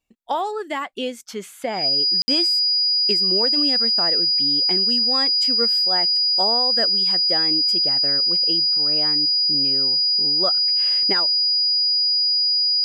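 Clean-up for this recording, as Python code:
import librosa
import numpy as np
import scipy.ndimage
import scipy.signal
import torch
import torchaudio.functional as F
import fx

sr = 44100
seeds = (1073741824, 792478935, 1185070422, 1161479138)

y = fx.notch(x, sr, hz=4900.0, q=30.0)
y = fx.fix_ambience(y, sr, seeds[0], print_start_s=0.85, print_end_s=1.35, start_s=2.22, end_s=2.28)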